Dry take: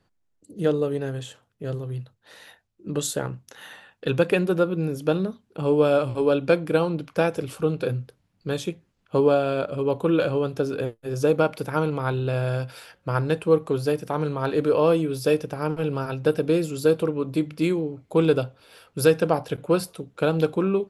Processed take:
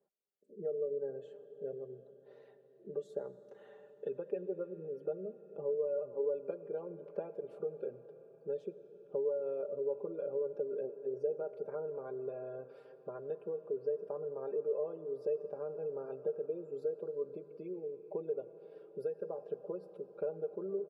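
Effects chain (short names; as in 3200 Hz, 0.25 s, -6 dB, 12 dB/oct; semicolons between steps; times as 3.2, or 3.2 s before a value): compressor, threshold -28 dBFS, peak gain reduction 15 dB; comb 5 ms, depth 81%; spectral gate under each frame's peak -25 dB strong; band-pass 490 Hz, Q 4.4; reverb RT60 5.5 s, pre-delay 50 ms, DRR 12.5 dB; gain -2.5 dB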